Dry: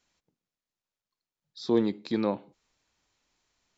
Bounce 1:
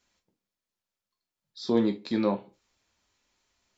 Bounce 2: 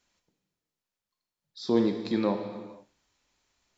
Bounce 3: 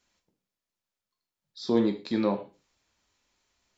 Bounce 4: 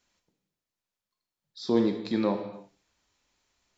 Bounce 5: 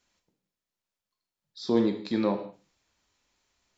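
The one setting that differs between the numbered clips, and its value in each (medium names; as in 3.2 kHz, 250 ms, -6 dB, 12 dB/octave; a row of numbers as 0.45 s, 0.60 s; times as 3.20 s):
gated-style reverb, gate: 90 ms, 520 ms, 150 ms, 350 ms, 230 ms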